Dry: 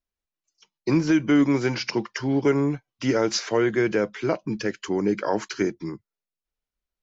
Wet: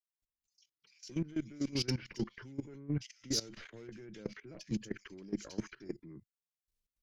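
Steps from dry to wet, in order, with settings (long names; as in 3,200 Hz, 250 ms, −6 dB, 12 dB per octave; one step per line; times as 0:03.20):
one-sided soft clipper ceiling −17 dBFS
reversed playback
downward compressor 10 to 1, threshold −30 dBFS, peak gain reduction 14 dB
reversed playback
parametric band 840 Hz −15 dB 2 octaves
multiband delay without the direct sound highs, lows 220 ms, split 2,300 Hz
output level in coarse steps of 18 dB
level +4.5 dB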